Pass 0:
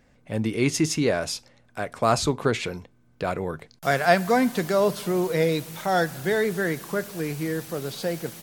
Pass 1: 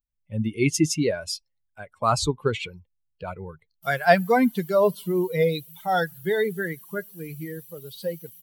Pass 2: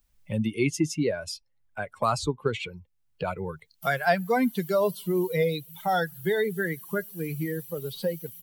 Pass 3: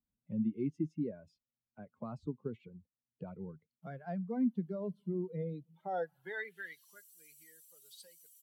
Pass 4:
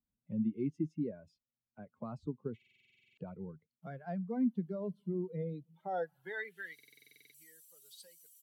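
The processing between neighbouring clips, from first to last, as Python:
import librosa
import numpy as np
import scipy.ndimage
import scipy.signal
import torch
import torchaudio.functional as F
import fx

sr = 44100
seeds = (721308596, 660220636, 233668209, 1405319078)

y1 = fx.bin_expand(x, sr, power=2.0)
y1 = y1 * librosa.db_to_amplitude(4.0)
y2 = fx.band_squash(y1, sr, depth_pct=70)
y2 = y2 * librosa.db_to_amplitude(-2.5)
y3 = fx.filter_sweep_bandpass(y2, sr, from_hz=220.0, to_hz=7500.0, start_s=5.66, end_s=7.0, q=2.2)
y3 = y3 * librosa.db_to_amplitude(-4.5)
y4 = fx.buffer_glitch(y3, sr, at_s=(2.57, 6.74), block=2048, repeats=12)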